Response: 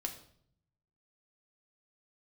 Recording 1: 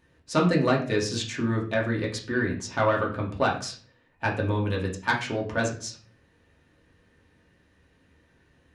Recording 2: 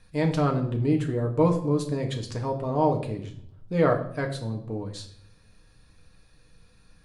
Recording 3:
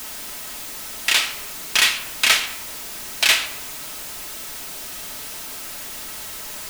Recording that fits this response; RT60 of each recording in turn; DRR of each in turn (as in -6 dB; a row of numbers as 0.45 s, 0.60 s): 2; 0.40 s, 0.60 s, 1.1 s; -3.0 dB, 2.5 dB, 3.5 dB